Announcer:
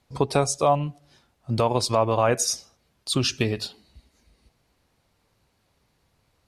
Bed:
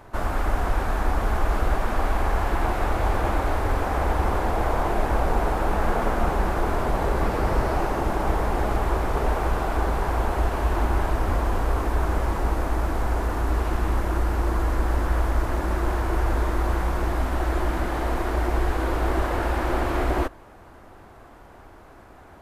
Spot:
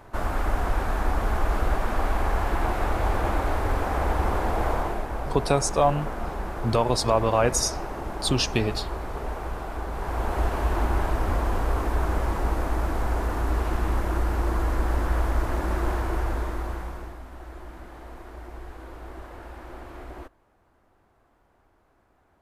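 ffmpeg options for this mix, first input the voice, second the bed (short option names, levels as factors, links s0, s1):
-filter_complex "[0:a]adelay=5150,volume=0.944[s0];[1:a]volume=1.88,afade=t=out:st=4.71:d=0.35:silence=0.446684,afade=t=in:st=9.89:d=0.53:silence=0.446684,afade=t=out:st=15.88:d=1.31:silence=0.16788[s1];[s0][s1]amix=inputs=2:normalize=0"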